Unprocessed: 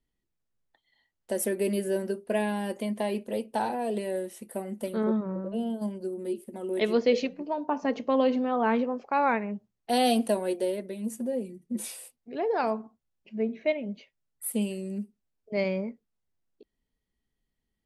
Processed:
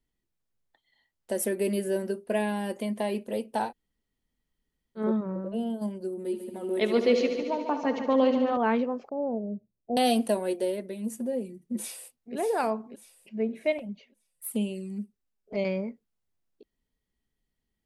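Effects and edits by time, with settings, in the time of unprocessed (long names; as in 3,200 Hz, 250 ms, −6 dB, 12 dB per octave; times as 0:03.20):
0:03.68–0:05.00: fill with room tone, crossfade 0.10 s
0:06.10–0:08.57: echo machine with several playback heads 72 ms, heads first and second, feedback 66%, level −12 dB
0:09.09–0:09.97: elliptic low-pass filter 630 Hz, stop band 70 dB
0:11.73–0:12.36: delay throw 590 ms, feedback 35%, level −7.5 dB
0:13.78–0:15.65: flanger swept by the level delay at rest 6.5 ms, full sweep at −27 dBFS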